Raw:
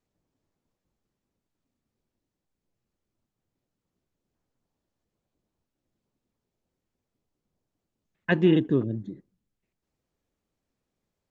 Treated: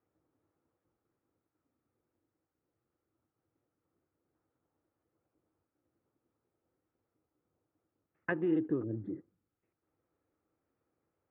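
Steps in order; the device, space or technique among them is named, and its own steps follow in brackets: bass amplifier (compressor 5:1, threshold -32 dBFS, peak gain reduction 15.5 dB; speaker cabinet 75–2300 Hz, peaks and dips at 96 Hz +5 dB, 200 Hz -6 dB, 320 Hz +9 dB, 490 Hz +6 dB, 800 Hz +4 dB, 1300 Hz +9 dB); gain -2.5 dB

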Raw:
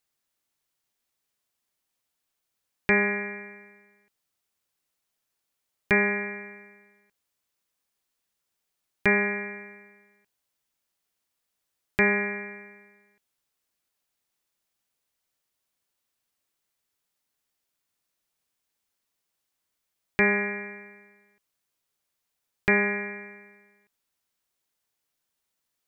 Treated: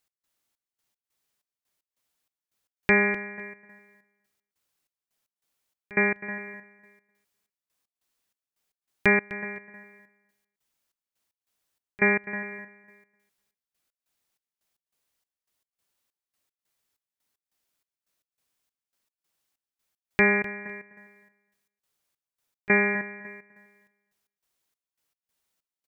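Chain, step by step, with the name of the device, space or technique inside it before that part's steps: trance gate with a delay (step gate "x..xxxx...x" 191 bpm -24 dB; feedback echo 0.253 s, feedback 16%, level -16 dB); gain +1.5 dB

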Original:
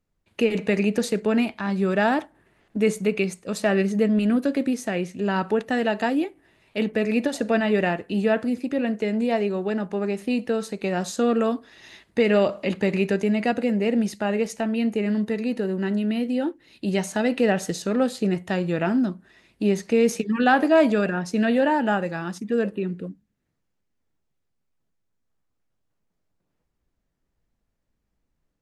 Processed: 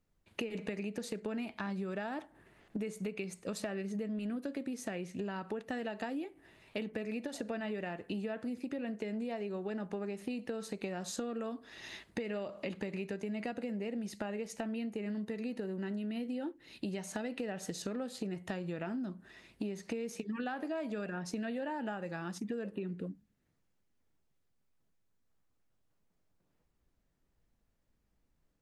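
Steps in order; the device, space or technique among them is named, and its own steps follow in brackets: serial compression, leveller first (compressor 2:1, threshold -25 dBFS, peak gain reduction 7 dB; compressor 6:1, threshold -35 dBFS, peak gain reduction 14.5 dB); gain -1 dB

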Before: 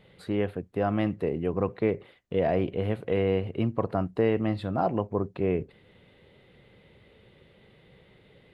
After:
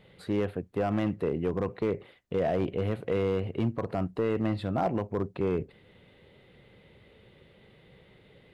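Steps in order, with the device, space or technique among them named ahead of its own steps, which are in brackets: limiter into clipper (limiter -16 dBFS, peak gain reduction 5 dB; hard clip -20 dBFS, distortion -18 dB)

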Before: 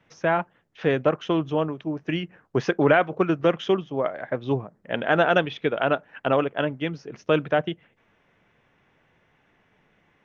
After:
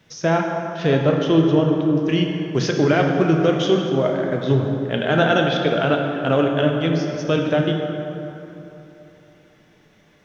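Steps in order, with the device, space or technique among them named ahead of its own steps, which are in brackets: bell 920 Hz -4.5 dB 1.2 oct; harmonic-percussive split percussive -6 dB; 0.9–1.95 air absorption 72 m; over-bright horn tweeter (resonant high shelf 3300 Hz +8 dB, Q 1.5; limiter -16.5 dBFS, peak gain reduction 6 dB); plate-style reverb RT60 3.3 s, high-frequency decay 0.5×, DRR 1.5 dB; gain +8.5 dB

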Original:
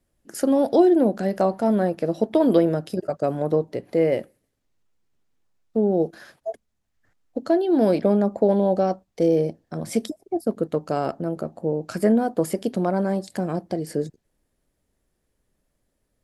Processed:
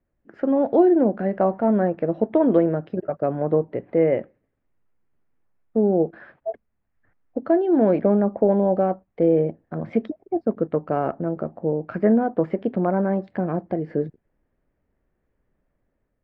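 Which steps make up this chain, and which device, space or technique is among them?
action camera in a waterproof case (LPF 2200 Hz 24 dB/oct; AGC gain up to 4.5 dB; gain -3 dB; AAC 128 kbps 48000 Hz)

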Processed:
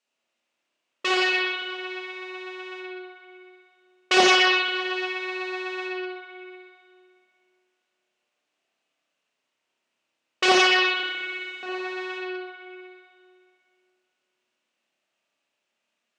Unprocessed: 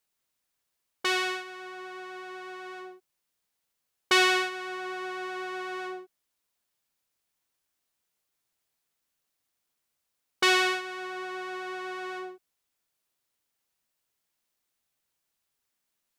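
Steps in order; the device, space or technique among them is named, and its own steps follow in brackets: 11.03–11.63 inverse Chebyshev band-stop 360–1500 Hz, stop band 80 dB; spring tank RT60 2.3 s, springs 30/57 ms, chirp 75 ms, DRR -5 dB; full-range speaker at full volume (Doppler distortion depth 0.48 ms; speaker cabinet 230–7600 Hz, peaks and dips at 240 Hz +6 dB, 590 Hz +6 dB, 2700 Hz +7 dB)

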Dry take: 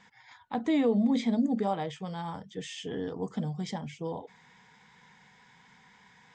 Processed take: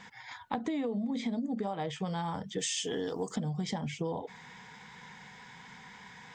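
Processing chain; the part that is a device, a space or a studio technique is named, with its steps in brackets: 2.58–3.36 tone controls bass -8 dB, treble +14 dB; serial compression, leveller first (compressor, threshold -28 dBFS, peak gain reduction 7 dB; compressor 6:1, threshold -39 dBFS, peak gain reduction 11 dB); gain +8 dB

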